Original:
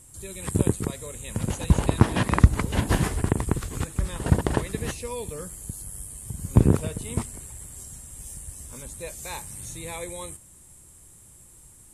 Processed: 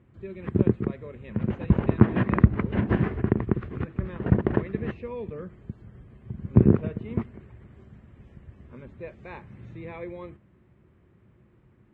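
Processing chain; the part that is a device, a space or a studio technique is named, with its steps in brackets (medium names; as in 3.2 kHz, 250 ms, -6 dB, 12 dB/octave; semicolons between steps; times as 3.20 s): bass cabinet (cabinet simulation 69–2300 Hz, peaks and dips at 120 Hz +4 dB, 210 Hz +8 dB, 370 Hz +7 dB, 880 Hz -5 dB); trim -2.5 dB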